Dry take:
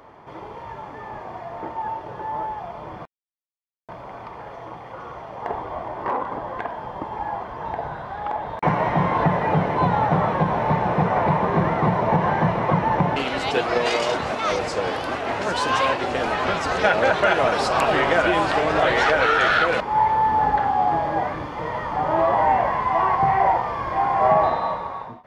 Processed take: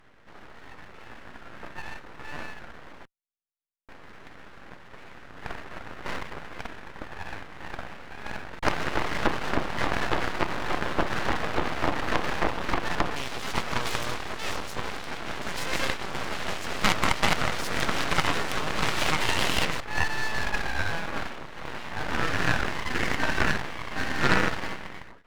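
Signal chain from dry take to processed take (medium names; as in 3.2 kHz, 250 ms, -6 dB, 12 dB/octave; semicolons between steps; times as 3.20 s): Chebyshev shaper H 3 -14 dB, 6 -15 dB, 8 -15 dB, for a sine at -5.5 dBFS; full-wave rectifier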